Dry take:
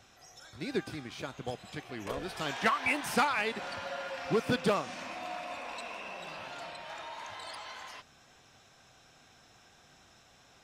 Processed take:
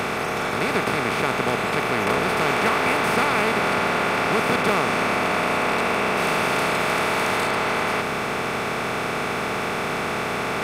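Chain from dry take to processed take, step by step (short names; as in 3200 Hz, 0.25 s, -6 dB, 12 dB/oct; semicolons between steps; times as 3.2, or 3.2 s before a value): per-bin compression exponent 0.2; 6.17–7.47 high shelf 4700 Hz +6 dB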